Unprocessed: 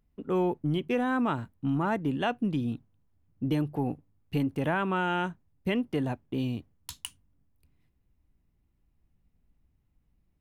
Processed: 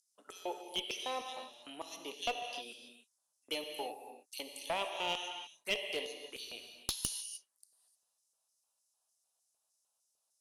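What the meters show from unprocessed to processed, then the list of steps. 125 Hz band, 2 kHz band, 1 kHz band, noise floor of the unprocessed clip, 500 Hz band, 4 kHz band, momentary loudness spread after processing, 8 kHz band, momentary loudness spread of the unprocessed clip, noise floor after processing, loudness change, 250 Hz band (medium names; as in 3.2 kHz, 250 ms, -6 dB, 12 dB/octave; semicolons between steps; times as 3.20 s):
-28.5 dB, -7.0 dB, -9.0 dB, -72 dBFS, -10.0 dB, +5.0 dB, 12 LU, +8.0 dB, 12 LU, -83 dBFS, -9.5 dB, -24.0 dB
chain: steep low-pass 11 kHz 48 dB/octave; differentiator; touch-sensitive phaser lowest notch 350 Hz, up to 1.5 kHz, full sweep at -50.5 dBFS; LFO high-pass square 3.3 Hz 540–5600 Hz; gated-style reverb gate 330 ms flat, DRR 4.5 dB; one-sided clip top -46 dBFS; trim +14 dB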